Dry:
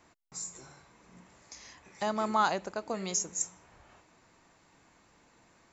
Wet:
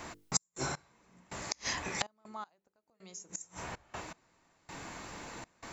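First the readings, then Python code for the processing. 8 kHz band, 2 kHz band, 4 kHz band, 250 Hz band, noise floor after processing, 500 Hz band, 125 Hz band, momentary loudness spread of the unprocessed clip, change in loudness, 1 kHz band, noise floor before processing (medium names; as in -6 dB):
no reading, +0.5 dB, +2.5 dB, -7.0 dB, -81 dBFS, -9.0 dB, +2.0 dB, 22 LU, -7.0 dB, -9.0 dB, -65 dBFS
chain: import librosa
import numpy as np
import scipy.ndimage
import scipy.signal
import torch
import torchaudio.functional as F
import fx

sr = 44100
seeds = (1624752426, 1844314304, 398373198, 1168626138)

y = fx.hum_notches(x, sr, base_hz=50, count=10)
y = fx.gate_flip(y, sr, shuts_db=-32.0, range_db=-34)
y = fx.step_gate(y, sr, bpm=80, pattern='xx.x...xx', floor_db=-24.0, edge_ms=4.5)
y = y * 10.0 ** (18.0 / 20.0)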